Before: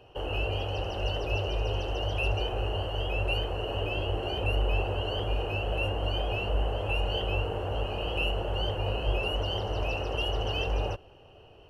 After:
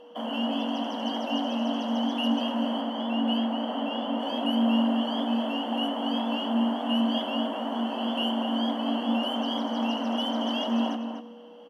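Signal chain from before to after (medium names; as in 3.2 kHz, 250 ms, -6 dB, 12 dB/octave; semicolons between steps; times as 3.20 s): 2.81–4.20 s: treble shelf 4.7 kHz -8.5 dB; echo from a far wall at 42 m, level -7 dB; frequency shift +180 Hz; Schroeder reverb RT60 1.2 s, combs from 27 ms, DRR 14.5 dB; whistle 480 Hz -47 dBFS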